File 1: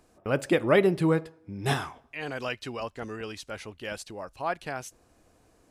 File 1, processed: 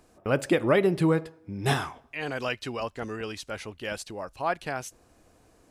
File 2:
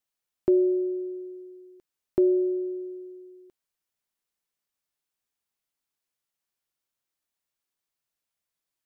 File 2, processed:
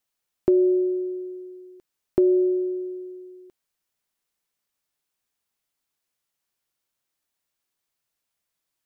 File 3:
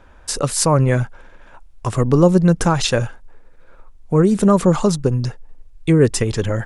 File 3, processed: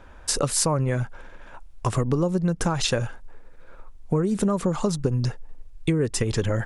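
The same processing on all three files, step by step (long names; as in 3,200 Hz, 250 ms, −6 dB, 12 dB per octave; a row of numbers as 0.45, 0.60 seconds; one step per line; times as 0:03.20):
downward compressor 12 to 1, threshold −19 dBFS
normalise the peak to −9 dBFS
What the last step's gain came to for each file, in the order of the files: +2.5, +4.5, +0.5 decibels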